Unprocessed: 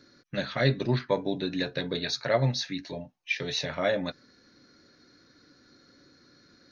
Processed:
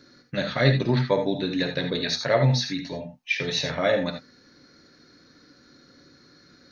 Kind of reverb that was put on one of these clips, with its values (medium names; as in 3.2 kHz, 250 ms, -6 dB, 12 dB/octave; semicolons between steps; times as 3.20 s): gated-style reverb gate 100 ms rising, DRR 6 dB; trim +3.5 dB